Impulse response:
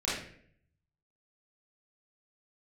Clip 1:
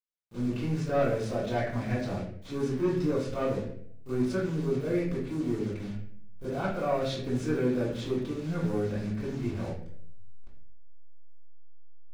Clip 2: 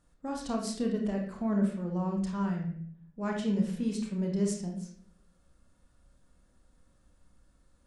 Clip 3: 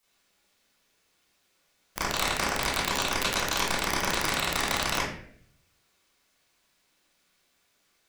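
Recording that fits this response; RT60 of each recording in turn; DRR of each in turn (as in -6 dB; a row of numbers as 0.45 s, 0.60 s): 3; 0.60 s, 0.60 s, 0.60 s; -16.5 dB, 0.0 dB, -10.0 dB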